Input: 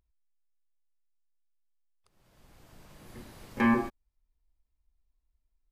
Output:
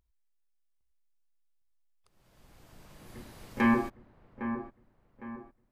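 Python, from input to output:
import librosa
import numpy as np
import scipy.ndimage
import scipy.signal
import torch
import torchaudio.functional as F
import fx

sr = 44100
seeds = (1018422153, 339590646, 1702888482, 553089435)

y = fx.echo_wet_lowpass(x, sr, ms=808, feedback_pct=38, hz=1600.0, wet_db=-9.5)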